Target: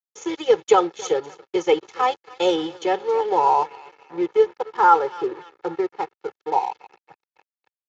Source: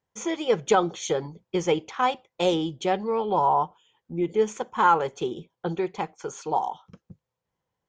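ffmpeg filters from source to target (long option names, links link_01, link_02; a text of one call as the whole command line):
ffmpeg -i in.wav -filter_complex "[0:a]asplit=3[link_01][link_02][link_03];[link_01]afade=type=out:start_time=4.45:duration=0.02[link_04];[link_02]lowpass=frequency=2100:width=0.5412,lowpass=frequency=2100:width=1.3066,afade=type=in:start_time=4.45:duration=0.02,afade=type=out:start_time=6.59:duration=0.02[link_05];[link_03]afade=type=in:start_time=6.59:duration=0.02[link_06];[link_04][link_05][link_06]amix=inputs=3:normalize=0,aecho=1:1:277|554|831|1108|1385:0.126|0.0692|0.0381|0.0209|0.0115,acompressor=mode=upward:threshold=-37dB:ratio=2.5,aeval=exprs='sgn(val(0))*max(abs(val(0))-0.0112,0)':channel_layout=same,highpass=270,aecho=1:1:2.3:0.87,volume=1.5dB" -ar 16000 -c:a libspeex -b:a 34k out.spx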